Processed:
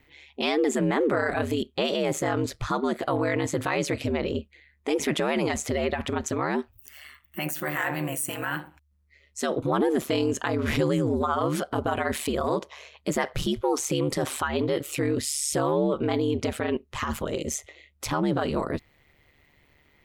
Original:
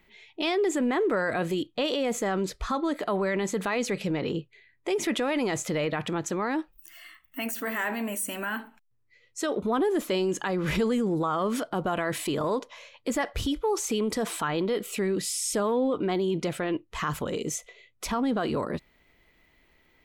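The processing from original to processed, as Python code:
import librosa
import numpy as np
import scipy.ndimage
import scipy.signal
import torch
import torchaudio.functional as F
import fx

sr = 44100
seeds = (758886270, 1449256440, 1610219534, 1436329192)

y = x * np.sin(2.0 * np.pi * 73.0 * np.arange(len(x)) / sr)
y = F.gain(torch.from_numpy(y), 4.5).numpy()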